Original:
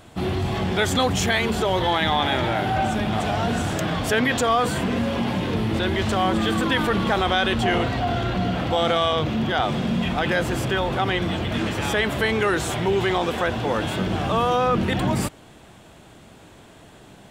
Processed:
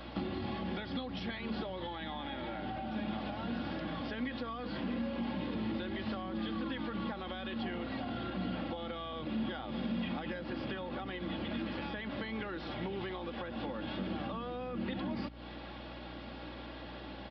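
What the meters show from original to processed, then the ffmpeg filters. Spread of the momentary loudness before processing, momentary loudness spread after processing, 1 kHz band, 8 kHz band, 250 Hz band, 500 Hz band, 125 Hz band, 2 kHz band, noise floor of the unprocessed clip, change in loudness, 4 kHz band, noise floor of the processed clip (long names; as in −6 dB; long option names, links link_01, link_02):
4 LU, 7 LU, −19.0 dB, below −40 dB, −12.0 dB, −18.0 dB, −18.5 dB, −19.0 dB, −48 dBFS, −16.5 dB, −18.0 dB, −46 dBFS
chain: -filter_complex "[0:a]highpass=180,aecho=1:1:3.6:0.52,acompressor=threshold=-32dB:ratio=6,aeval=exprs='val(0)+0.00282*(sin(2*PI*60*n/s)+sin(2*PI*2*60*n/s)/2+sin(2*PI*3*60*n/s)/3+sin(2*PI*4*60*n/s)/4+sin(2*PI*5*60*n/s)/5)':channel_layout=same,acrossover=split=260[link_01][link_02];[link_02]acompressor=threshold=-41dB:ratio=6[link_03];[link_01][link_03]amix=inputs=2:normalize=0,aresample=11025,aresample=44100,volume=1dB"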